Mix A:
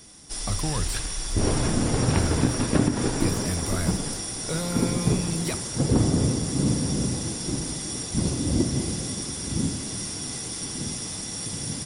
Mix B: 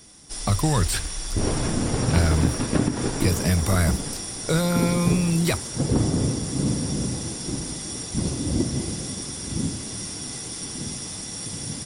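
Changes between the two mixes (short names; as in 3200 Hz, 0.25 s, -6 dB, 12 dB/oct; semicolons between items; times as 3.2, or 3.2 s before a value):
speech +8.5 dB; reverb: off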